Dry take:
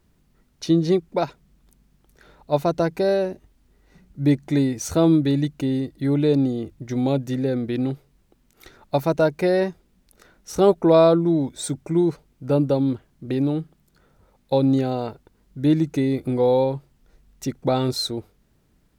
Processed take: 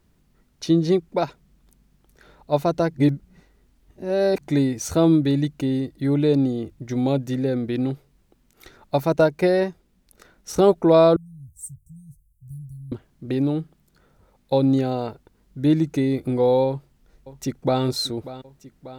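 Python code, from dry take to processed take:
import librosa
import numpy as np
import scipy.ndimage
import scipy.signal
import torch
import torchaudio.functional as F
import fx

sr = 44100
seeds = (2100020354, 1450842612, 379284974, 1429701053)

y = fx.transient(x, sr, attack_db=3, sustain_db=-2, at=(9.11, 10.61))
y = fx.cheby2_bandstop(y, sr, low_hz=330.0, high_hz=3300.0, order=4, stop_db=60, at=(11.16, 12.92))
y = fx.echo_throw(y, sr, start_s=16.67, length_s=1.15, ms=590, feedback_pct=70, wet_db=-15.5)
y = fx.edit(y, sr, fx.reverse_span(start_s=2.94, length_s=1.47), tone=tone)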